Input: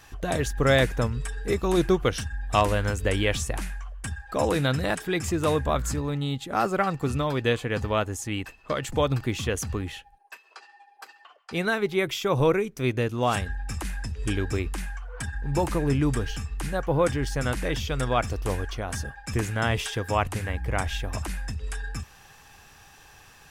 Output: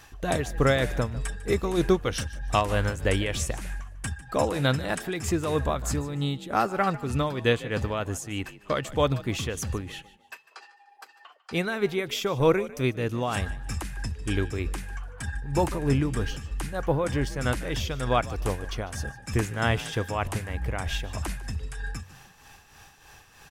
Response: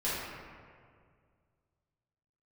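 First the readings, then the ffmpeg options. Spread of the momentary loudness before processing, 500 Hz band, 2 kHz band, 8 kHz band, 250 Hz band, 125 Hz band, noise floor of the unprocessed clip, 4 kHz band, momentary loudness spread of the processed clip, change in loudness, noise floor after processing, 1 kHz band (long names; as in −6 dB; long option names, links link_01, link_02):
10 LU, −1.0 dB, −1.5 dB, −1.0 dB, −1.0 dB, −1.0 dB, −53 dBFS, −1.0 dB, 11 LU, −1.0 dB, −56 dBFS, −1.0 dB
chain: -filter_complex "[0:a]tremolo=f=3.2:d=0.58,asplit=4[link_01][link_02][link_03][link_04];[link_02]adelay=149,afreqshift=47,volume=-18dB[link_05];[link_03]adelay=298,afreqshift=94,volume=-28.2dB[link_06];[link_04]adelay=447,afreqshift=141,volume=-38.3dB[link_07];[link_01][link_05][link_06][link_07]amix=inputs=4:normalize=0,volume=1.5dB"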